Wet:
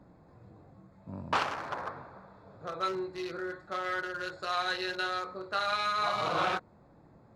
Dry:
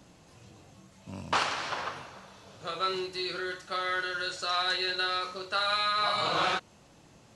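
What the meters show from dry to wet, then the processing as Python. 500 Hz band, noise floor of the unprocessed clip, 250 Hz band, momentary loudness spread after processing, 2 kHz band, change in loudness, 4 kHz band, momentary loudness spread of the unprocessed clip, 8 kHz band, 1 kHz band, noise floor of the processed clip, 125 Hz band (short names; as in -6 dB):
-0.5 dB, -58 dBFS, 0.0 dB, 14 LU, -3.0 dB, -3.0 dB, -8.0 dB, 14 LU, -6.5 dB, -1.5 dB, -59 dBFS, 0.0 dB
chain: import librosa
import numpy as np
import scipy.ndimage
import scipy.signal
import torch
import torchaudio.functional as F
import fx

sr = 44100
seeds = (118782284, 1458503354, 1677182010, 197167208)

y = fx.wiener(x, sr, points=15)
y = fx.high_shelf(y, sr, hz=3900.0, db=-7.5)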